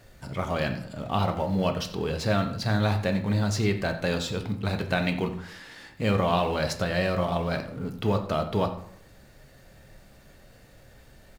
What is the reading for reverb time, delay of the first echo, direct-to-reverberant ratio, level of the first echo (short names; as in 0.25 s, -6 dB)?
0.70 s, 89 ms, 5.0 dB, -16.0 dB